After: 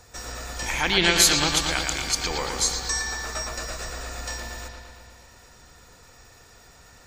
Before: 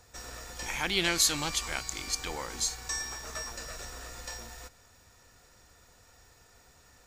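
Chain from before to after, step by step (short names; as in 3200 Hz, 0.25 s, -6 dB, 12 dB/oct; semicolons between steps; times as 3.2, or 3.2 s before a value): spectral gate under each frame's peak -30 dB strong; on a send: analogue delay 0.115 s, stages 4096, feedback 68%, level -5 dB; on the sum: gain +7 dB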